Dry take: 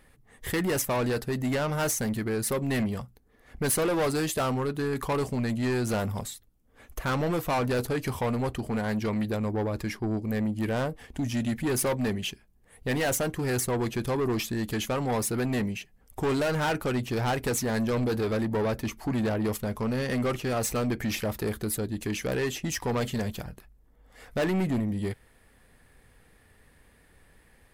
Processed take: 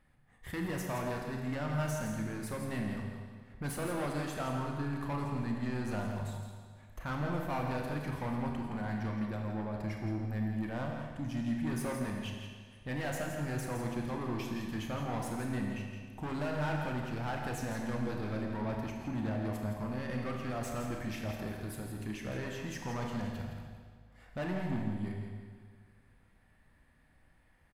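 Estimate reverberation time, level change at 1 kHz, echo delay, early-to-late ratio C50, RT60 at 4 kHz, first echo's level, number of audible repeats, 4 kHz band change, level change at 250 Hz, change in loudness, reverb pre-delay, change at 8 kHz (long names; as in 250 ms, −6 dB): 1.8 s, −7.0 dB, 166 ms, 1.5 dB, 1.7 s, −8.0 dB, 1, −11.5 dB, −7.0 dB, −8.5 dB, 27 ms, −15.5 dB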